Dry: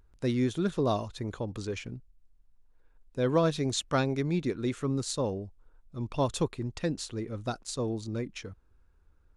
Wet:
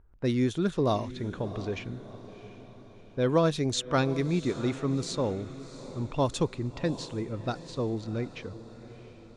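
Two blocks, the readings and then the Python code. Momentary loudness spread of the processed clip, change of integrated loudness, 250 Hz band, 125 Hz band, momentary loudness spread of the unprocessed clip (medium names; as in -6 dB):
19 LU, +1.5 dB, +1.5 dB, +1.5 dB, 12 LU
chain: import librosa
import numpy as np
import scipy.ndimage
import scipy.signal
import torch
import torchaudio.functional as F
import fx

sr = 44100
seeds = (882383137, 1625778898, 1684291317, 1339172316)

y = fx.env_lowpass(x, sr, base_hz=1600.0, full_db=-23.5)
y = fx.echo_diffused(y, sr, ms=700, feedback_pct=49, wet_db=-14.5)
y = y * librosa.db_to_amplitude(1.5)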